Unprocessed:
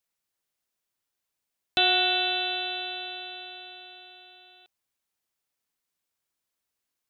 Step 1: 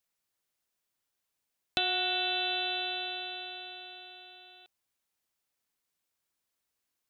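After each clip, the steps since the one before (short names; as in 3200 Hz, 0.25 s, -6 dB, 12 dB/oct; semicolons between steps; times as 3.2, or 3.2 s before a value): compressor, threshold -27 dBFS, peak gain reduction 8.5 dB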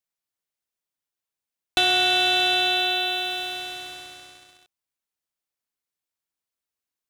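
sample leveller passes 3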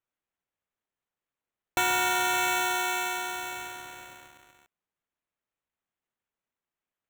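sample-and-hold 9×; gain -5.5 dB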